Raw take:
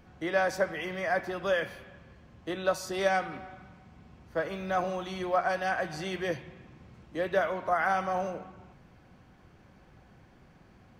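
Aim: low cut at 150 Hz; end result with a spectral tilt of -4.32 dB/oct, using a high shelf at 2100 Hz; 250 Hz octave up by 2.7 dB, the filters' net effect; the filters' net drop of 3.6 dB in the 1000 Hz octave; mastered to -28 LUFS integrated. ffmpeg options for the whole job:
-af "highpass=150,equalizer=f=250:t=o:g=6.5,equalizer=f=1k:t=o:g=-7.5,highshelf=f=2.1k:g=4,volume=4dB"

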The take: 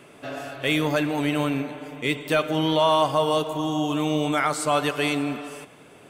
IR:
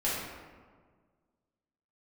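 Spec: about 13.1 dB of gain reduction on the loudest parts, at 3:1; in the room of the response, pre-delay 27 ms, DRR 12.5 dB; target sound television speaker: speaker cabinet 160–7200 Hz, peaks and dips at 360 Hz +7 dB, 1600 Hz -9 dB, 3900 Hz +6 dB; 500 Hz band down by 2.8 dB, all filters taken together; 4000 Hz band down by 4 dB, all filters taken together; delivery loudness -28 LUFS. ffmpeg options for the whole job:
-filter_complex "[0:a]equalizer=f=500:t=o:g=-4.5,equalizer=f=4k:t=o:g=-8,acompressor=threshold=-37dB:ratio=3,asplit=2[a][b];[1:a]atrim=start_sample=2205,adelay=27[c];[b][c]afir=irnorm=-1:irlink=0,volume=-21dB[d];[a][d]amix=inputs=2:normalize=0,highpass=f=160:w=0.5412,highpass=f=160:w=1.3066,equalizer=f=360:t=q:w=4:g=7,equalizer=f=1.6k:t=q:w=4:g=-9,equalizer=f=3.9k:t=q:w=4:g=6,lowpass=f=7.2k:w=0.5412,lowpass=f=7.2k:w=1.3066,volume=8.5dB"

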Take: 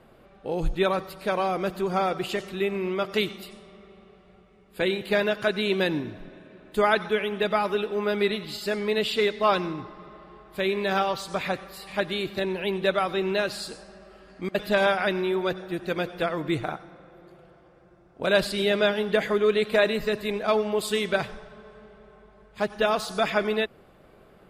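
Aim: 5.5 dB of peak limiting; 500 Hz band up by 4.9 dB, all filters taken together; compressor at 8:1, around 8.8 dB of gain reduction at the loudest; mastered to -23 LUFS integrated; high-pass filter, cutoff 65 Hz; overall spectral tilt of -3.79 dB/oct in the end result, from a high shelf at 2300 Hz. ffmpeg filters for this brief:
-af "highpass=65,equalizer=f=500:t=o:g=6,highshelf=f=2.3k:g=8,acompressor=threshold=-21dB:ratio=8,volume=5dB,alimiter=limit=-12dB:level=0:latency=1"

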